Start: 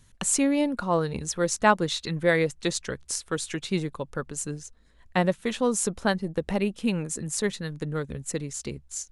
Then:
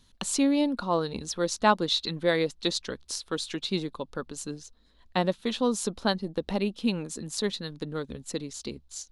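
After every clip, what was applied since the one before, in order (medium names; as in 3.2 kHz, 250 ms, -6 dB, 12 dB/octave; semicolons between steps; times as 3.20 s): graphic EQ 125/250/1000/2000/4000/8000 Hz -7/+5/+3/-5/+11/-6 dB; trim -3.5 dB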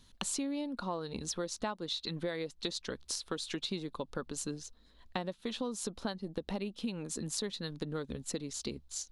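compression 12:1, threshold -33 dBFS, peak gain reduction 18 dB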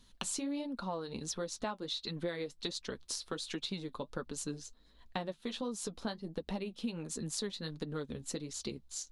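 flange 1.4 Hz, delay 3.8 ms, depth 5.9 ms, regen -47%; trim +2.5 dB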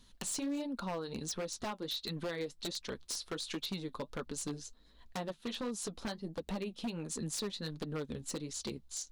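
wavefolder -32 dBFS; trim +1 dB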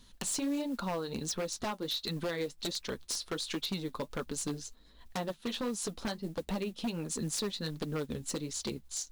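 modulation noise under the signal 26 dB; trim +3.5 dB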